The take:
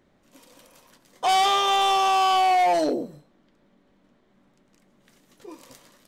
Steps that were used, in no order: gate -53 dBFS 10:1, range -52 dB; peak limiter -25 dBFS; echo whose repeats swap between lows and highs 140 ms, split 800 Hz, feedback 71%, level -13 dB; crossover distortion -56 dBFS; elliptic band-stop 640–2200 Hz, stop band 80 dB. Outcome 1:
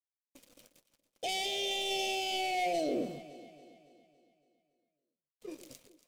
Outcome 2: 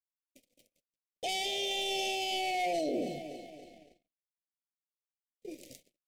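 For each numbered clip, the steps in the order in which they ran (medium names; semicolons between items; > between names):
gate > elliptic band-stop > peak limiter > crossover distortion > echo whose repeats swap between lows and highs; echo whose repeats swap between lows and highs > crossover distortion > gate > elliptic band-stop > peak limiter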